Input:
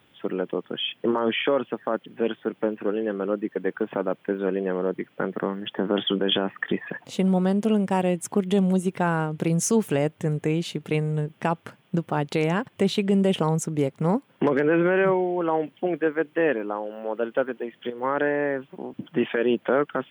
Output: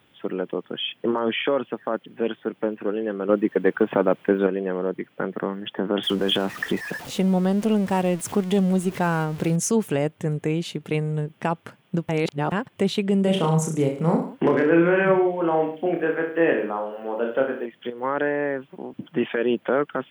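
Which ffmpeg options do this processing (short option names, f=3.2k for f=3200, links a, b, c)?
-filter_complex "[0:a]asettb=1/sr,asplit=3[a][b][c];[a]atrim=end=3.294[d];[b]atrim=start=3.29:end=4.47,asetpts=PTS-STARTPTS,afade=t=in:d=0.004:c=qsin,afade=t=out:st=1.176:d=0.004:c=qsin,acontrast=79[e];[c]atrim=start=4.466[f];[d][e]acrossfade=d=0.004:c1=hsin:c2=qsin[g];[g][f]acrossfade=d=0.004:c1=qsin:c2=hsin,asettb=1/sr,asplit=3[h][i][j];[h]atrim=end=6.034[k];[i]atrim=start=6.03:end=9.56,asetpts=PTS-STARTPTS,afade=t=in:d=0.004:c=qsin,afade=t=out:st=3.526:d=0.004:c=qsin,aeval=exprs='val(0)+0.5*0.0211*sgn(val(0))':c=same[l];[j]atrim=start=9.556[m];[k][l]acrossfade=d=0.004:c1=hsin:c2=qsin[n];[n][m]acrossfade=d=0.004:c1=qsin:c2=hsin,asettb=1/sr,asplit=3[o][p][q];[o]atrim=end=13.244[r];[p]atrim=start=13.24:end=17.66,asetpts=PTS-STARTPTS,afade=t=in:d=0.004:c=qsin,afade=t=out:st=4.416:d=0.004:c=qsin,aecho=1:1:30|63|99.3|139.2|183.2:0.631|0.398|0.251|0.158|0.1,atrim=end_sample=194922[s];[q]atrim=start=17.656[t];[r][s]acrossfade=d=0.004:c1=hsin:c2=qsin[u];[u][t]acrossfade=d=0.004:c1=qsin:c2=hsin,asplit=3[v][w][x];[v]atrim=end=12.092[y];[w]atrim=start=12.088:end=12.522,asetpts=PTS-STARTPTS,areverse[z];[x]atrim=start=12.518[aa];[y][z]acrossfade=d=0.004:c1=hsin:c2=hsin[ab];[ab][aa]acrossfade=d=0.004:c1=hsin:c2=hsin"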